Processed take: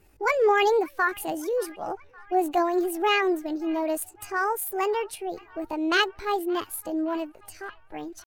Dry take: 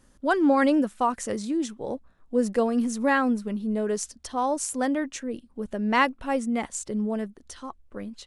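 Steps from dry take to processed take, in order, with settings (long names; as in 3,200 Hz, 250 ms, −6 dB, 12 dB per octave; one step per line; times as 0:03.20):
spectral magnitudes quantised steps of 15 dB
delay with a band-pass on its return 571 ms, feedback 65%, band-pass 1,200 Hz, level −21.5 dB
pitch shifter +7 semitones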